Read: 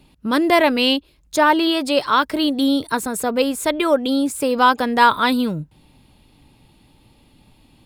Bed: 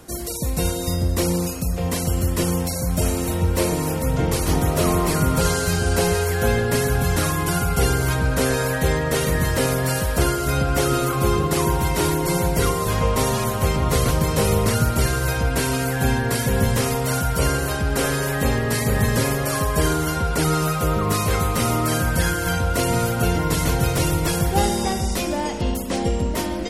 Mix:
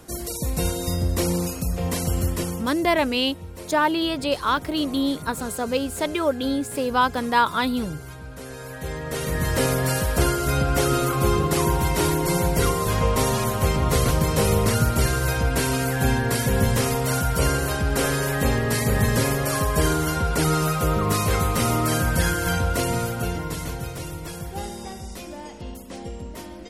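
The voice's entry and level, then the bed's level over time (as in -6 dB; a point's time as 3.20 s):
2.35 s, -5.5 dB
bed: 2.26 s -2 dB
3.01 s -18 dB
8.43 s -18 dB
9.59 s -1 dB
22.61 s -1 dB
24.03 s -13 dB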